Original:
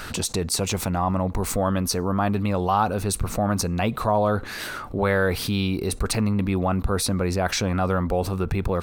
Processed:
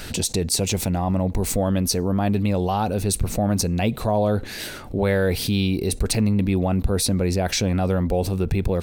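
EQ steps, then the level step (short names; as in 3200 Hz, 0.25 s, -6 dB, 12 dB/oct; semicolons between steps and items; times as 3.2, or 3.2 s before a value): bell 1200 Hz -13 dB 0.91 oct; +3.0 dB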